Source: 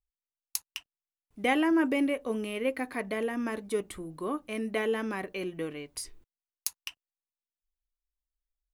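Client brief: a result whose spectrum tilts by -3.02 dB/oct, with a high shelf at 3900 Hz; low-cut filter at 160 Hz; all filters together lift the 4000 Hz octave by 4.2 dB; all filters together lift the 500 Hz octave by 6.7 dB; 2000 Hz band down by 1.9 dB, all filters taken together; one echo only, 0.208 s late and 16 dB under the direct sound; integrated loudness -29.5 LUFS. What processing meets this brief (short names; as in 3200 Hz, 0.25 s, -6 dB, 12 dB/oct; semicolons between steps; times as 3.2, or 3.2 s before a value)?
HPF 160 Hz; bell 500 Hz +8 dB; bell 2000 Hz -5.5 dB; high shelf 3900 Hz +8.5 dB; bell 4000 Hz +3 dB; echo 0.208 s -16 dB; gain -2 dB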